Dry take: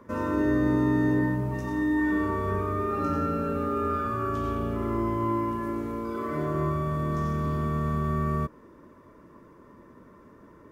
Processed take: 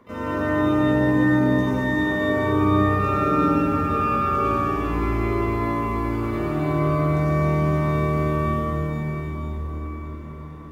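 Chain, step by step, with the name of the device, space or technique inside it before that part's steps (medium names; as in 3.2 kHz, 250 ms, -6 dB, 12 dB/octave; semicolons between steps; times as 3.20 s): shimmer-style reverb (harmony voices +12 st -11 dB; reverberation RT60 6.1 s, pre-delay 73 ms, DRR -7 dB); trim -2.5 dB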